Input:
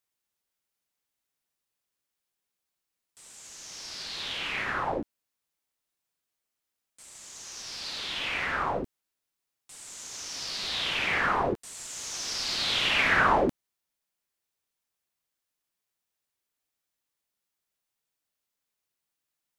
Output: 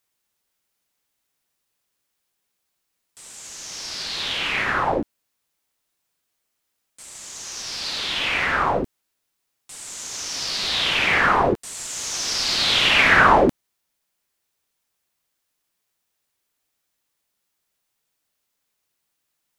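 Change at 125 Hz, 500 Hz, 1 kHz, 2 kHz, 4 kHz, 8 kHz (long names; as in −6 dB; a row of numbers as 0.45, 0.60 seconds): +8.5, +8.5, +8.5, +8.5, +8.5, +8.5 decibels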